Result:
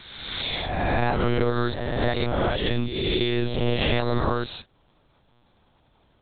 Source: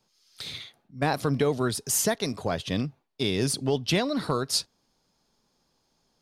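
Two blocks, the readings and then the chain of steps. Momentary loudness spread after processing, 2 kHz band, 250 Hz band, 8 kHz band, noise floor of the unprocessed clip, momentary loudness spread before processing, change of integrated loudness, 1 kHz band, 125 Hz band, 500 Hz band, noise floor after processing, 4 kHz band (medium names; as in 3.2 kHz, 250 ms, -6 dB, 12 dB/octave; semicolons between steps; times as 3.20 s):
5 LU, +5.5 dB, +2.0 dB, under -40 dB, -73 dBFS, 13 LU, +2.0 dB, +4.5 dB, +4.5 dB, +3.0 dB, -63 dBFS, +2.5 dB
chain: reverse spectral sustain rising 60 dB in 1.31 s; compression 3:1, threshold -29 dBFS, peak gain reduction 9.5 dB; monotone LPC vocoder at 8 kHz 120 Hz; trim +8 dB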